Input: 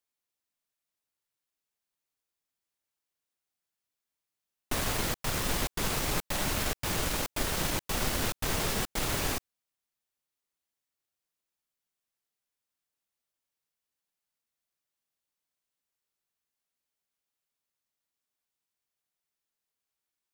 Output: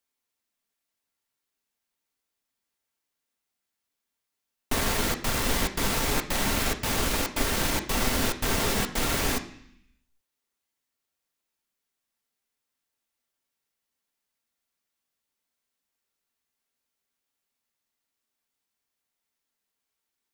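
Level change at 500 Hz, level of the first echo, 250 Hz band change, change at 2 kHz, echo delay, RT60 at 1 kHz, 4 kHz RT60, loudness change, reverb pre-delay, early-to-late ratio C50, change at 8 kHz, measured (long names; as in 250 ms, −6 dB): +5.0 dB, no echo audible, +6.0 dB, +5.0 dB, no echo audible, 0.70 s, 0.85 s, +4.5 dB, 3 ms, 11.5 dB, +4.0 dB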